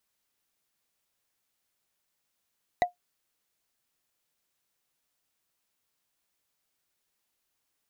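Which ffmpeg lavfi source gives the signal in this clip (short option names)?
-f lavfi -i "aevalsrc='0.168*pow(10,-3*t/0.13)*sin(2*PI*712*t)+0.075*pow(10,-3*t/0.038)*sin(2*PI*1963*t)+0.0335*pow(10,-3*t/0.017)*sin(2*PI*3847.6*t)+0.015*pow(10,-3*t/0.009)*sin(2*PI*6360.3*t)+0.00668*pow(10,-3*t/0.006)*sin(2*PI*9498.1*t)':d=0.45:s=44100"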